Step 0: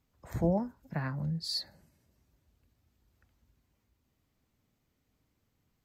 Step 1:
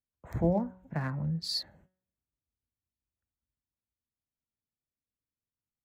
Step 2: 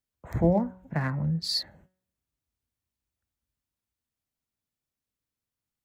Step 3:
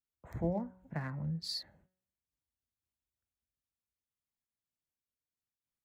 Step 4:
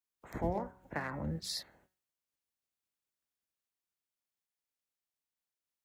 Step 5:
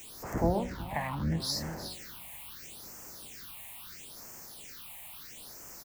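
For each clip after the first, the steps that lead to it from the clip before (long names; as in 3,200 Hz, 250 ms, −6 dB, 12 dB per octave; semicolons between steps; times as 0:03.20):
adaptive Wiener filter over 9 samples; noise gate −60 dBFS, range −25 dB; hum removal 185.6 Hz, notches 18; level +1.5 dB
dynamic equaliser 2,000 Hz, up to +5 dB, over −59 dBFS, Q 5.1; level +4.5 dB
amplitude modulation by smooth noise, depth 65%; level −6.5 dB
ceiling on every frequency bin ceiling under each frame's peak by 18 dB
converter with a step at zero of −41 dBFS; single-tap delay 362 ms −11 dB; all-pass phaser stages 6, 0.75 Hz, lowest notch 370–3,600 Hz; level +5 dB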